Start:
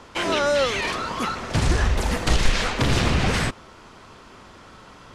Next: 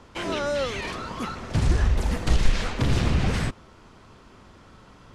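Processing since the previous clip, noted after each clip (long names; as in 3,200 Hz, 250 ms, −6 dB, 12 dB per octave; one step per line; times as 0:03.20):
low-shelf EQ 310 Hz +8 dB
level −7.5 dB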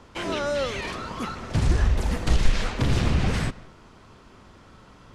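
convolution reverb RT60 0.50 s, pre-delay 110 ms, DRR 20.5 dB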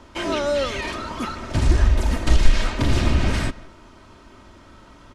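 comb filter 3.2 ms, depth 47%
level +2.5 dB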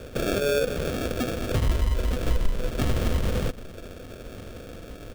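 sample-rate reduction 1,000 Hz, jitter 0%
thirty-one-band graphic EQ 315 Hz −4 dB, 500 Hz +9 dB, 800 Hz −7 dB, 3,150 Hz +4 dB
downward compressor 2.5 to 1, threshold −33 dBFS, peak gain reduction 17.5 dB
level +6.5 dB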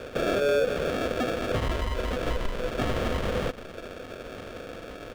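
mid-hump overdrive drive 15 dB, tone 2,200 Hz, clips at −11 dBFS
level −2 dB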